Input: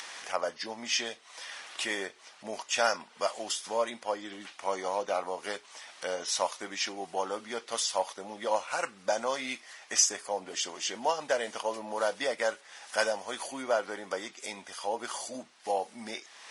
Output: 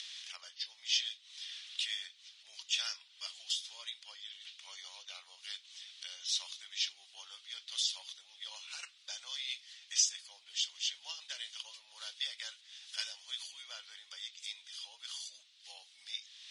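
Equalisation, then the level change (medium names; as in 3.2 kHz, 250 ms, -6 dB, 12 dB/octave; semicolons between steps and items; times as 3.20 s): ladder band-pass 4 kHz, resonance 55%; +7.5 dB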